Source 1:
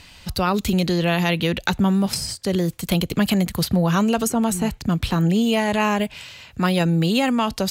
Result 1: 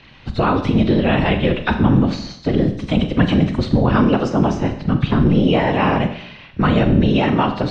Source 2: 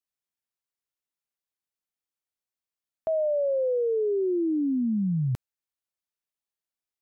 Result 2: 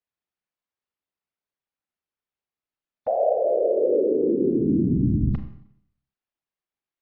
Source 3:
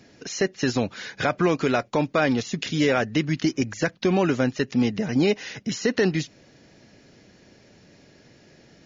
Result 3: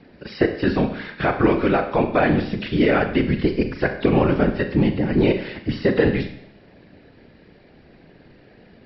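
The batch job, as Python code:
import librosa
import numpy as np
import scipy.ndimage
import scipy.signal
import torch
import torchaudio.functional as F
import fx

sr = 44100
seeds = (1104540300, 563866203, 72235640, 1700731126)

y = fx.freq_compress(x, sr, knee_hz=3400.0, ratio=1.5)
y = fx.whisperise(y, sr, seeds[0])
y = fx.air_absorb(y, sr, metres=270.0)
y = fx.rev_schroeder(y, sr, rt60_s=0.68, comb_ms=30, drr_db=7.0)
y = y * librosa.db_to_amplitude(4.0)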